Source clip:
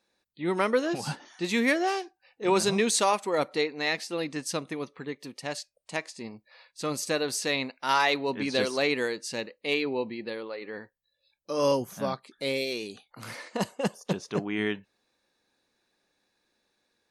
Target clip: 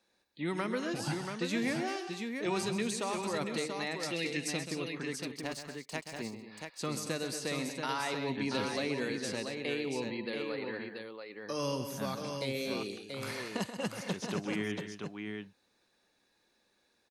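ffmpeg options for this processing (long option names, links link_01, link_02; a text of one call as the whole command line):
ffmpeg -i in.wav -filter_complex "[0:a]asettb=1/sr,asplit=3[link_01][link_02][link_03];[link_01]atrim=end=4.034[link_04];[link_02]atrim=start=4.03:end=4.69,asetpts=PTS-STARTPTS,afade=type=in:duration=0.004:curve=qsin,afade=type=out:start_time=0.656:duration=0.004:curve=qsin,highshelf=frequency=1600:width_type=q:width=3:gain=11[link_05];[link_03]atrim=start=4.686[link_06];[link_04][link_05]acrossfade=duration=0.004:curve1=hsin:curve2=qsin[link_07];[link_07][link_06]acrossfade=duration=0.004:curve1=qsin:curve2=hsin,acrossover=split=230|1300[link_08][link_09][link_10];[link_08]acompressor=threshold=-36dB:ratio=4[link_11];[link_09]acompressor=threshold=-39dB:ratio=4[link_12];[link_10]acompressor=threshold=-40dB:ratio=4[link_13];[link_11][link_12][link_13]amix=inputs=3:normalize=0,asettb=1/sr,asplit=3[link_14][link_15][link_16];[link_14]atrim=end=5.304[link_17];[link_15]atrim=start=5.3:end=6.2,asetpts=PTS-STARTPTS,afade=type=in:duration=0.004:curve=qsin,afade=type=out:start_time=0.896:duration=0.004:curve=qsin,aeval=exprs='sgn(val(0))*max(abs(val(0))-0.00251,0)':channel_layout=same[link_18];[link_16]atrim=start=6.196[link_19];[link_17][link_18]acrossfade=duration=0.004:curve1=hsin:curve2=qsin[link_20];[link_20][link_19]acrossfade=duration=0.004:curve1=qsin:curve2=hsin,aecho=1:1:131|199|228|683:0.316|0.112|0.251|0.531" out.wav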